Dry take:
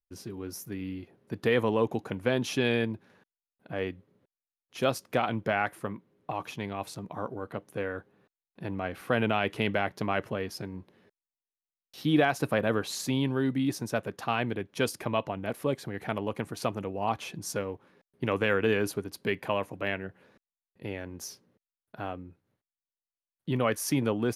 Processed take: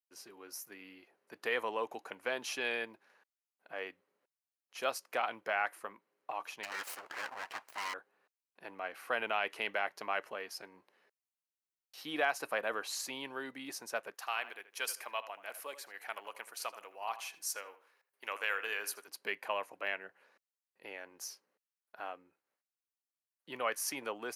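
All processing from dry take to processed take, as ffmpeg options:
ffmpeg -i in.wav -filter_complex "[0:a]asettb=1/sr,asplit=3[link_01][link_02][link_03];[link_01]atrim=end=6.634[link_04];[link_02]atrim=start=6.63:end=7.94,asetpts=PTS-STARTPTS,afade=type=in:duration=0.004:curve=qsin,afade=type=out:start_time=1.306:duration=0.004:curve=qsin,highpass=frequency=61:width=0.5412,highpass=frequency=61:width=1.3066,asplit=2[link_05][link_06];[link_06]highpass=frequency=720:poles=1,volume=17dB,asoftclip=type=tanh:threshold=-19dB[link_07];[link_05][link_07]amix=inputs=2:normalize=0,lowpass=frequency=6900:poles=1,volume=-6dB,aeval=exprs='abs(val(0))':channel_layout=same[link_08];[link_03]atrim=start=7.936[link_09];[link_04][link_08]acrossfade=duration=0.004:curve1=hsin:curve2=qsin[link_10];[link_10][link_09]acrossfade=duration=0.004:curve1=qsin:curve2=hsin,asettb=1/sr,asplit=3[link_11][link_12][link_13];[link_11]atrim=end=14.144[link_14];[link_12]atrim=start=14.14:end=19.08,asetpts=PTS-STARTPTS,afade=type=in:duration=0.004:curve=qsin,afade=type=out:start_time=4.936:duration=0.004:curve=qsin,highpass=frequency=1100:poles=1,highshelf=frequency=10000:gain=9,asplit=2[link_15][link_16];[link_16]adelay=79,lowpass=frequency=2800:poles=1,volume=-13dB,asplit=2[link_17][link_18];[link_18]adelay=79,lowpass=frequency=2800:poles=1,volume=0.31,asplit=2[link_19][link_20];[link_20]adelay=79,lowpass=frequency=2800:poles=1,volume=0.31[link_21];[link_15][link_17][link_19][link_21]amix=inputs=4:normalize=0,atrim=end_sample=217854[link_22];[link_13]atrim=start=19.076[link_23];[link_14][link_22]acrossfade=duration=0.004:curve1=hsin:curve2=qsin[link_24];[link_24][link_23]acrossfade=duration=0.004:curve1=qsin:curve2=hsin,highpass=720,equalizer=frequency=3500:width_type=o:width=0.2:gain=-7,volume=-3dB" out.wav

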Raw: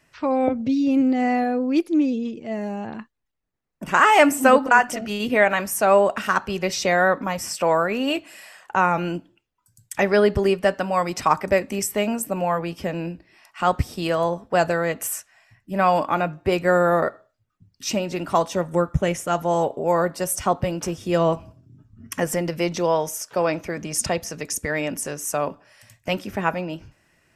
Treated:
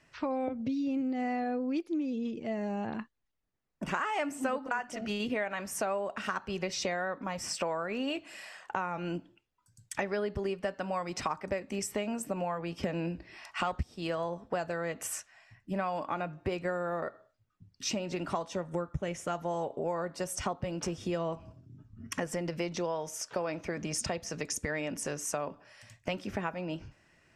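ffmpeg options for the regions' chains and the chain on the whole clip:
ffmpeg -i in.wav -filter_complex "[0:a]asettb=1/sr,asplit=3[link_01][link_02][link_03];[link_01]atrim=end=12.834[link_04];[link_02]atrim=start=12.83:end=13.83,asetpts=PTS-STARTPTS,afade=type=in:duration=0.004:curve=qsin,afade=type=out:start_time=0.996:duration=0.004:curve=qsin,asubboost=boost=11:cutoff=86,acontrast=75,highpass=43[link_05];[link_03]atrim=start=13.826[link_06];[link_04][link_05]acrossfade=duration=0.004:curve1=hsin:curve2=qsin[link_07];[link_07][link_06]acrossfade=duration=0.004:curve1=qsin:curve2=hsin,lowpass=7400,acompressor=threshold=-28dB:ratio=6,volume=-2.5dB" out.wav

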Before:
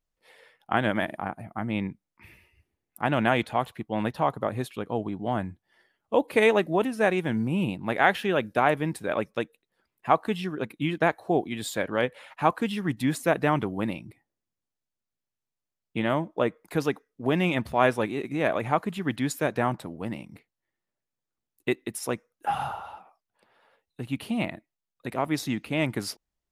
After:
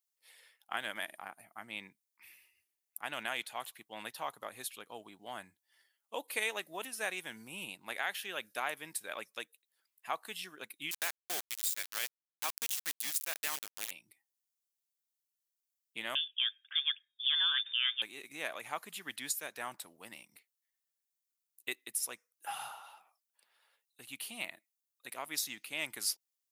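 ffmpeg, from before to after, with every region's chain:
ffmpeg -i in.wav -filter_complex "[0:a]asettb=1/sr,asplit=3[link_01][link_02][link_03];[link_01]atrim=end=10.914[link_04];[link_02]atrim=start=10.91:end=13.91,asetpts=PTS-STARTPTS,afade=type=in:duration=0.004:curve=qsin,afade=type=out:start_time=2.996:duration=0.004:curve=qsin,highshelf=frequency=2000:gain=12,aeval=exprs='val(0)*gte(abs(val(0)),0.0794)':channel_layout=same[link_05];[link_03]atrim=start=13.906[link_06];[link_04][link_05]acrossfade=duration=0.004:curve1=hsin:curve2=qsin[link_07];[link_07][link_06]acrossfade=duration=0.004:curve1=qsin:curve2=hsin,asettb=1/sr,asplit=3[link_08][link_09][link_10];[link_08]atrim=end=16.154[link_11];[link_09]atrim=start=16.15:end=18.02,asetpts=PTS-STARTPTS,afade=type=in:duration=0.004:curve=qsin,afade=type=out:start_time=1.866:duration=0.004:curve=qsin,lowpass=frequency=3100:width_type=q:width=0.5098,lowpass=frequency=3100:width_type=q:width=0.6013,lowpass=frequency=3100:width_type=q:width=0.9,lowpass=frequency=3100:width_type=q:width=2.563,afreqshift=-3700,equalizer=frequency=1600:width=6.2:gain=13.5[link_12];[link_10]atrim=start=18.016[link_13];[link_11][link_12]acrossfade=duration=0.004:curve1=hsin:curve2=qsin[link_14];[link_14][link_13]acrossfade=duration=0.004:curve1=qsin:curve2=hsin,aderivative,alimiter=level_in=0.5dB:limit=-24dB:level=0:latency=1:release=485,volume=-0.5dB,volume=4dB" out.wav

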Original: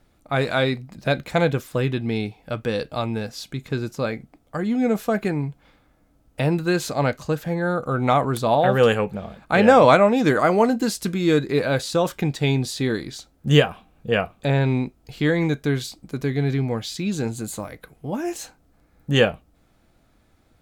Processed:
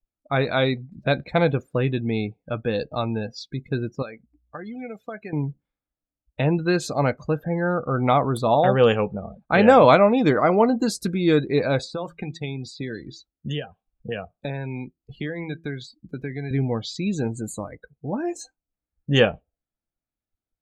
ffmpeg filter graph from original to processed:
ffmpeg -i in.wav -filter_complex "[0:a]asettb=1/sr,asplit=3[link_01][link_02][link_03];[link_01]atrim=end=4.024[link_04];[link_02]atrim=start=4.02:end=5.33,asetpts=PTS-STARTPTS,afade=type=in:duration=0.004:curve=qsin,afade=type=out:start_time=1.306:duration=0.004:curve=qsin,aeval=exprs='val(0)+0.00631*(sin(2*PI*60*n/s)+sin(2*PI*2*60*n/s)/2+sin(2*PI*3*60*n/s)/3+sin(2*PI*4*60*n/s)/4+sin(2*PI*5*60*n/s)/5)':channel_layout=same,lowshelf=frequency=270:gain=-10.5,acrossover=split=2000|7500[link_05][link_06][link_07];[link_05]acompressor=threshold=-34dB:ratio=4[link_08];[link_06]acompressor=threshold=-41dB:ratio=4[link_09];[link_07]acompressor=threshold=-48dB:ratio=4[link_10];[link_08][link_09][link_10]amix=inputs=3:normalize=0[link_11];[link_03]atrim=start=5.326[link_12];[link_04][link_11]acrossfade=duration=0.004:curve1=hsin:curve2=qsin[link_13];[link_13][link_12]acrossfade=duration=0.004:curve1=qsin:curve2=hsin,asettb=1/sr,asplit=3[link_14][link_15][link_16];[link_14]atrim=end=11.844[link_17];[link_15]atrim=start=11.84:end=16.51,asetpts=PTS-STARTPTS,afade=type=in:duration=0.004:curve=qsin,afade=type=out:start_time=4.666:duration=0.004:curve=qsin,acrossover=split=82|890[link_18][link_19][link_20];[link_18]acompressor=threshold=-50dB:ratio=4[link_21];[link_19]acompressor=threshold=-30dB:ratio=4[link_22];[link_20]acompressor=threshold=-35dB:ratio=4[link_23];[link_21][link_22][link_23]amix=inputs=3:normalize=0,bandreject=frequency=165.2:width_type=h:width=4,bandreject=frequency=330.4:width_type=h:width=4[link_24];[link_16]atrim=start=16.506[link_25];[link_17][link_24]acrossfade=duration=0.004:curve1=hsin:curve2=qsin[link_26];[link_26][link_25]acrossfade=duration=0.004:curve1=qsin:curve2=hsin,adynamicequalizer=threshold=0.01:dfrequency=1600:dqfactor=3.4:tfrequency=1600:tqfactor=3.4:attack=5:release=100:ratio=0.375:range=3:mode=cutabove:tftype=bell,afftdn=noise_reduction=33:noise_floor=-36" out.wav

